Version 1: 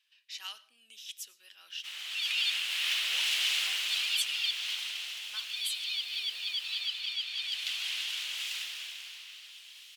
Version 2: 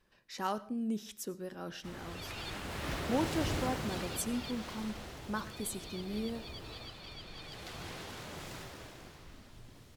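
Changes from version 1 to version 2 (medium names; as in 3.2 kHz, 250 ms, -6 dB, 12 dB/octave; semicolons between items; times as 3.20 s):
background -8.5 dB; master: remove resonant high-pass 2.9 kHz, resonance Q 3.5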